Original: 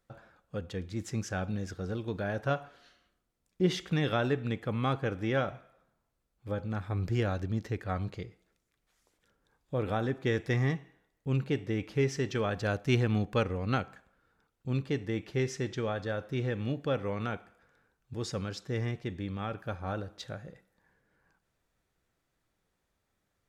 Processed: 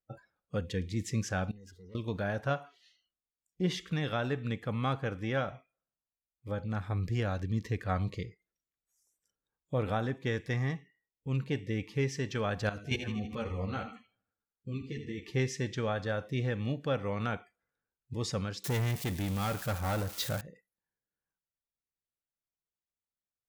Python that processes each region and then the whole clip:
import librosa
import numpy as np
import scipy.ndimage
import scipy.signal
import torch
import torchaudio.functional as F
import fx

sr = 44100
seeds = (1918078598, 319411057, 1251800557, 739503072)

y = fx.chain(x, sr, fx.leveller(passes=3),
    fx.gate_flip(shuts_db=-43.0, range_db=-26),
    fx.env_flatten(amount_pct=50), at=(1.51, 1.95))
y = fx.chain(y, sr, fx.level_steps(step_db=12),
    fx.echo_feedback(ms=79, feedback_pct=57, wet_db=-9.0),
    fx.ensemble(), at=(12.69, 15.23))
y = fx.chain(y, sr, fx.crossing_spikes(level_db=-38.0),
    fx.leveller(passes=3), at=(18.64, 20.41))
y = fx.noise_reduce_blind(y, sr, reduce_db=23)
y = fx.dynamic_eq(y, sr, hz=360.0, q=2.3, threshold_db=-47.0, ratio=4.0, max_db=-5)
y = fx.rider(y, sr, range_db=4, speed_s=0.5)